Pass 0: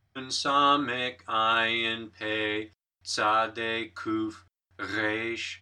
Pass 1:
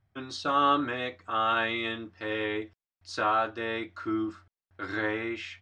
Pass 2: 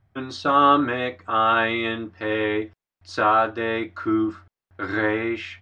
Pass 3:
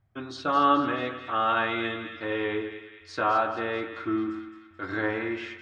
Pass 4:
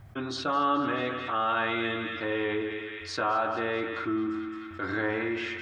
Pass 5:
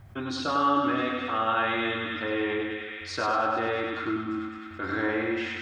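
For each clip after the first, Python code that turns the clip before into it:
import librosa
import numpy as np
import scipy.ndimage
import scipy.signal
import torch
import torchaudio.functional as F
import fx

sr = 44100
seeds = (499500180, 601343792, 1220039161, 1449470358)

y1 = fx.lowpass(x, sr, hz=1800.0, slope=6)
y2 = fx.high_shelf(y1, sr, hz=3500.0, db=-10.0)
y2 = F.gain(torch.from_numpy(y2), 8.5).numpy()
y3 = fx.echo_split(y2, sr, split_hz=1400.0, low_ms=95, high_ms=216, feedback_pct=52, wet_db=-9)
y3 = F.gain(torch.from_numpy(y3), -6.0).numpy()
y4 = fx.env_flatten(y3, sr, amount_pct=50)
y4 = F.gain(torch.from_numpy(y4), -5.5).numpy()
y5 = fx.echo_feedback(y4, sr, ms=99, feedback_pct=42, wet_db=-4.0)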